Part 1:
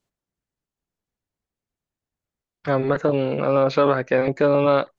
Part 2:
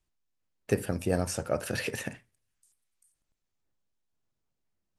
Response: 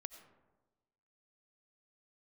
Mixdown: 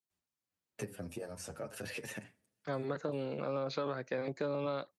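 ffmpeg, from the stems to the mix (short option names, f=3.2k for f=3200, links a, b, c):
-filter_complex "[0:a]agate=range=-8dB:threshold=-38dB:ratio=16:detection=peak,aexciter=amount=2.8:drive=3.4:freq=3.8k,volume=-14.5dB,asplit=2[a][b];[1:a]acompressor=threshold=-36dB:ratio=5,asplit=2[c][d];[d]adelay=7.6,afreqshift=-2.3[e];[c][e]amix=inputs=2:normalize=1,adelay=100,volume=-0.5dB,asplit=2[f][g];[g]volume=-18dB[h];[b]apad=whole_len=224677[i];[f][i]sidechaincompress=threshold=-35dB:ratio=8:attack=16:release=213[j];[2:a]atrim=start_sample=2205[k];[h][k]afir=irnorm=-1:irlink=0[l];[a][j][l]amix=inputs=3:normalize=0,highpass=96,acrossover=split=170[m][n];[n]acompressor=threshold=-32dB:ratio=6[o];[m][o]amix=inputs=2:normalize=0"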